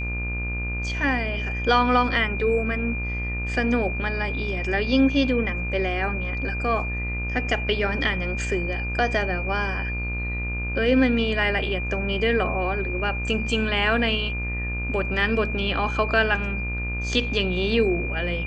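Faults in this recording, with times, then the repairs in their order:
mains buzz 60 Hz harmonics 32 −29 dBFS
whistle 2,400 Hz −30 dBFS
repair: notch filter 2,400 Hz, Q 30
hum removal 60 Hz, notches 32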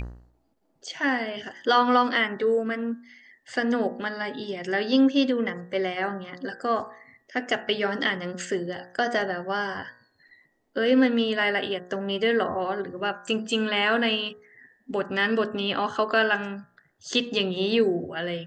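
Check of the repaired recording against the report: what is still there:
none of them is left

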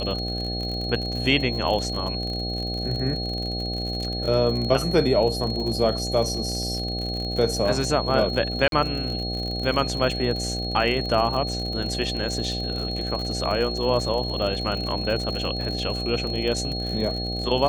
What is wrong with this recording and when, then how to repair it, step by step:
mains buzz 60 Hz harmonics 13 −30 dBFS
surface crackle 52 per second −29 dBFS
whistle 4,300 Hz −30 dBFS
0:08.68–0:08.72: drop-out 42 ms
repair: click removal
hum removal 60 Hz, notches 13
notch filter 4,300 Hz, Q 30
repair the gap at 0:08.68, 42 ms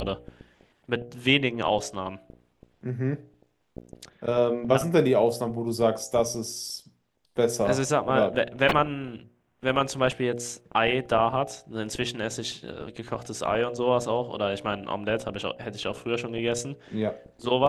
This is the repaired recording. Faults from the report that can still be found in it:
none of them is left

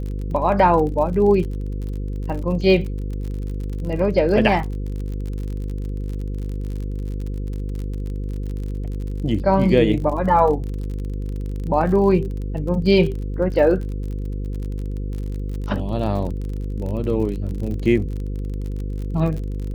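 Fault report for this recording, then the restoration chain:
mains buzz 50 Hz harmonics 10 −26 dBFS
surface crackle 40 per second −29 dBFS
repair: click removal
hum removal 50 Hz, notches 10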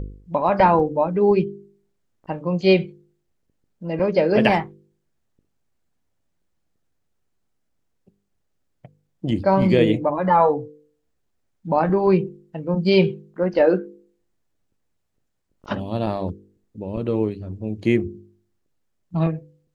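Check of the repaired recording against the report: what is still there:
none of them is left

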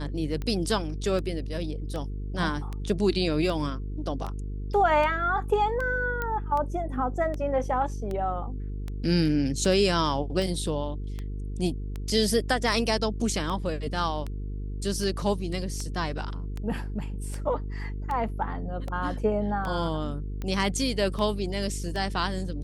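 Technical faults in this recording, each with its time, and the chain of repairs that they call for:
mains buzz 50 Hz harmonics 9 −33 dBFS
scratch tick 78 rpm −21 dBFS
0:06.22: click −17 dBFS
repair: click removal
hum removal 50 Hz, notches 9

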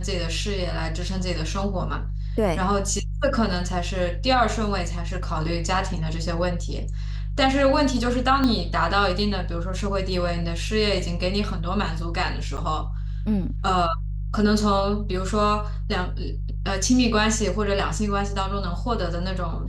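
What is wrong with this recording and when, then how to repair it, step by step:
mains hum 50 Hz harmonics 3 −28 dBFS
0:08.44: click −11 dBFS
0:12.57–0:12.58: drop-out 8.7 ms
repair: click removal
hum removal 50 Hz, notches 3
repair the gap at 0:12.57, 8.7 ms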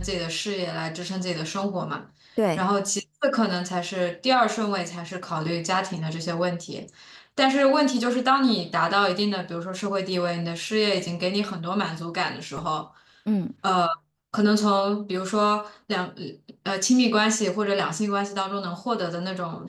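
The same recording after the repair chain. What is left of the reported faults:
0:08.44: click

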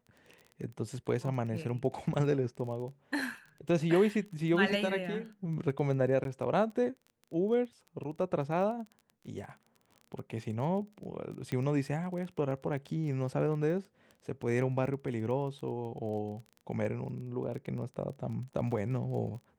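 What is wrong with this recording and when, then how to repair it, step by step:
surface crackle 22 per second −41 dBFS
0:06.24–0:06.25: drop-out 12 ms
0:11.52: click −23 dBFS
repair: click removal
repair the gap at 0:06.24, 12 ms

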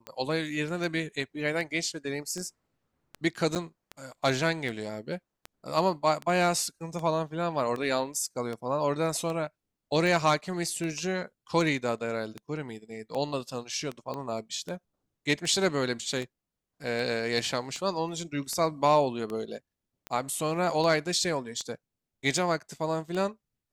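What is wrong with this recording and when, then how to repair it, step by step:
scratch tick 78 rpm −22 dBFS
0:03.55–0:03.56: drop-out 7.6 ms
0:14.14: click −23 dBFS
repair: click removal
repair the gap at 0:03.55, 7.6 ms

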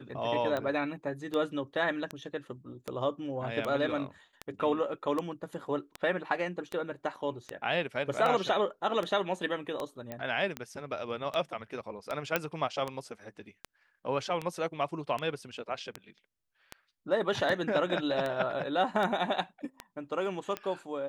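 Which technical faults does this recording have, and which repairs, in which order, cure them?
scratch tick 78 rpm −20 dBFS
0:10.12: click −23 dBFS
0:12.36: click −12 dBFS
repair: click removal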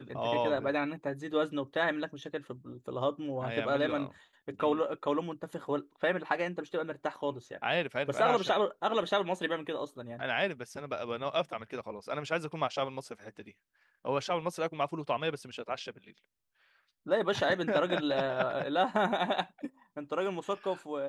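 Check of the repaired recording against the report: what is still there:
none of them is left

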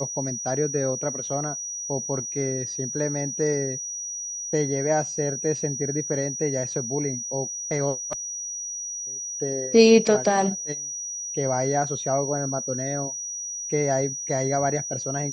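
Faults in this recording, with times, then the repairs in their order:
whistle 5,800 Hz −30 dBFS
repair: notch filter 5,800 Hz, Q 30

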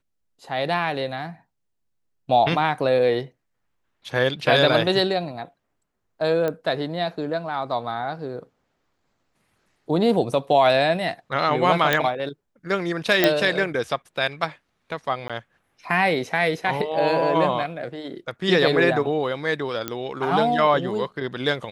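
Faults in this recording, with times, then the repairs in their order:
0:06.48: click −13 dBFS
0:11.93: click −5 dBFS
0:13.24: click −3 dBFS
0:15.28–0:15.30: drop-out 16 ms
0:19.88: click −10 dBFS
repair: click removal
repair the gap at 0:15.28, 16 ms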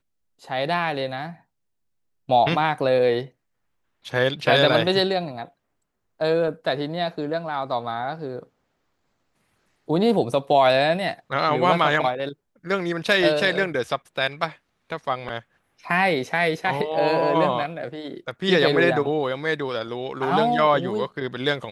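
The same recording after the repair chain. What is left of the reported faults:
0:11.93: click

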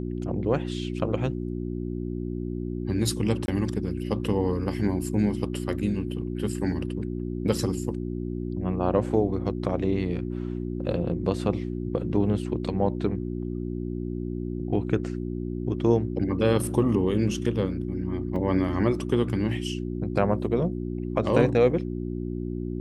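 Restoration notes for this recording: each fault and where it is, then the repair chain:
mains hum 60 Hz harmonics 6 −31 dBFS
0:03.46–0:03.48: drop-out 21 ms
0:18.36: drop-out 3.2 ms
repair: hum removal 60 Hz, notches 6
repair the gap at 0:03.46, 21 ms
repair the gap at 0:18.36, 3.2 ms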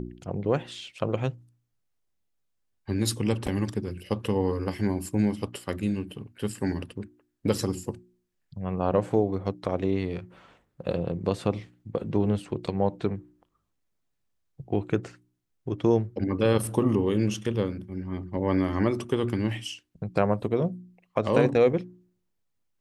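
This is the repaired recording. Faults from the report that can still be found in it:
none of them is left

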